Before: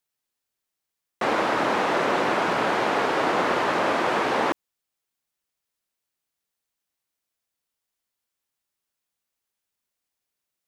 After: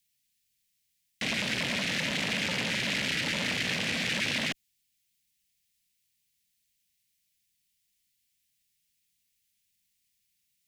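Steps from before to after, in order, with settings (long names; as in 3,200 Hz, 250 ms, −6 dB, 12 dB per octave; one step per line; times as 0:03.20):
inverse Chebyshev band-stop filter 460–1,000 Hz, stop band 60 dB
saturating transformer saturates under 2,300 Hz
level +8 dB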